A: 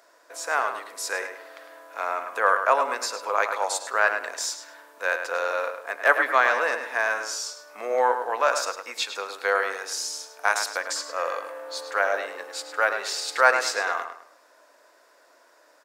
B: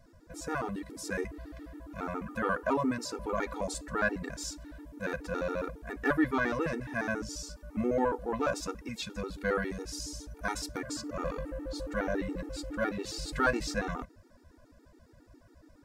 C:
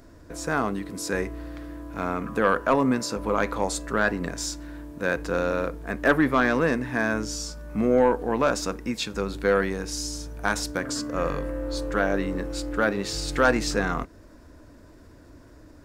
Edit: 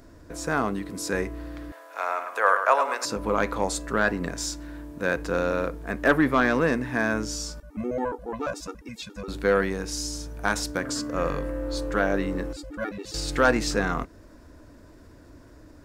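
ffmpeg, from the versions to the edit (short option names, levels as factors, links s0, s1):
-filter_complex "[1:a]asplit=2[s0][s1];[2:a]asplit=4[s2][s3][s4][s5];[s2]atrim=end=1.722[s6];[0:a]atrim=start=1.718:end=3.052[s7];[s3]atrim=start=3.048:end=7.602[s8];[s0]atrim=start=7.598:end=9.282[s9];[s4]atrim=start=9.278:end=12.532[s10];[s1]atrim=start=12.528:end=13.142[s11];[s5]atrim=start=13.138[s12];[s6][s7]acrossfade=d=0.004:c1=hsin:c2=hsin[s13];[s13][s8]acrossfade=d=0.004:c1=hsin:c2=hsin[s14];[s14][s9]acrossfade=d=0.004:c1=hsin:c2=hsin[s15];[s15][s10]acrossfade=d=0.004:c1=hsin:c2=hsin[s16];[s16][s11]acrossfade=d=0.004:c1=hsin:c2=hsin[s17];[s17][s12]acrossfade=d=0.004:c1=hsin:c2=hsin"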